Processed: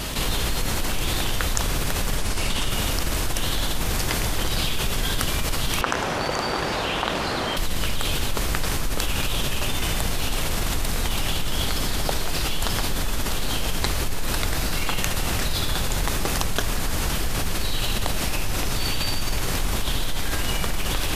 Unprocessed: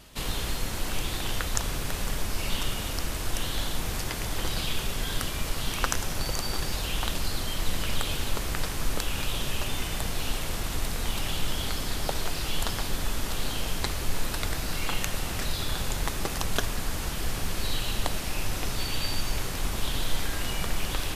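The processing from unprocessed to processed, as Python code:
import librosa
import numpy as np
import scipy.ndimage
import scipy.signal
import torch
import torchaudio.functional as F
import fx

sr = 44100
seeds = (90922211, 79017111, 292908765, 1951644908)

y = fx.delta_mod(x, sr, bps=64000, step_db=-34.0, at=(2.17, 2.7))
y = fx.bandpass_q(y, sr, hz=760.0, q=0.52, at=(5.81, 7.57))
y = fx.env_flatten(y, sr, amount_pct=70)
y = F.gain(torch.from_numpy(y), -2.0).numpy()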